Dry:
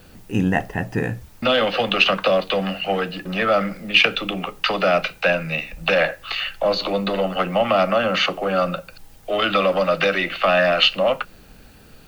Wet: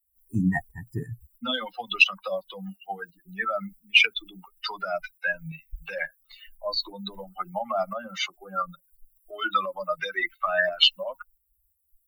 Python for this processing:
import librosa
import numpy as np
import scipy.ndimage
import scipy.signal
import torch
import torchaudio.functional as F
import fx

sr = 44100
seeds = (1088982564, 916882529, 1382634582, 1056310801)

y = fx.bin_expand(x, sr, power=3.0)
y = fx.peak_eq(y, sr, hz=470.0, db=-14.0, octaves=0.85)
y = fx.tremolo_shape(y, sr, shape='saw_up', hz=2.9, depth_pct=45)
y = y * librosa.db_to_amplitude(4.5)